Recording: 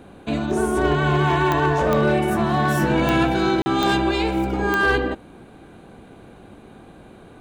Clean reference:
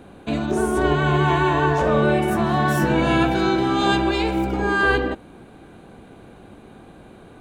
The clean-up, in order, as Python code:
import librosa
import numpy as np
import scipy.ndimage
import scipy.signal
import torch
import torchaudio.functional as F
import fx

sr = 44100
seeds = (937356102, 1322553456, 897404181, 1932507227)

y = fx.fix_declip(x, sr, threshold_db=-12.0)
y = fx.fix_declick_ar(y, sr, threshold=10.0)
y = fx.fix_interpolate(y, sr, at_s=(3.62,), length_ms=40.0)